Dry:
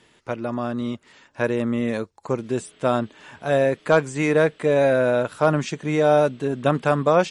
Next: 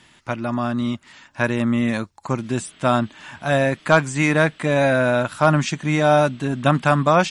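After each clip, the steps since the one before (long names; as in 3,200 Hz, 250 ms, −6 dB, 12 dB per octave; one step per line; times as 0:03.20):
parametric band 450 Hz −13.5 dB 0.66 octaves
level +6 dB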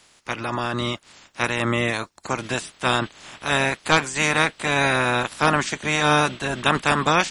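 ceiling on every frequency bin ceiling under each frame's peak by 20 dB
level −2.5 dB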